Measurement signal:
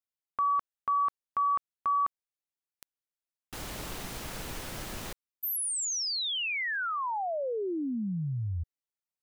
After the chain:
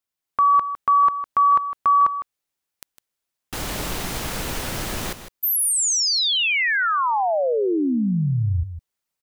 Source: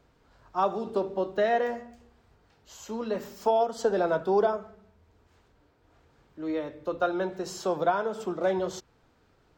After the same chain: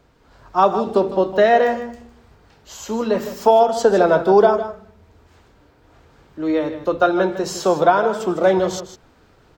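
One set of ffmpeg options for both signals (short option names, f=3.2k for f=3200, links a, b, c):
-af "aecho=1:1:156:0.266,dynaudnorm=f=190:g=3:m=4dB,volume=7dB"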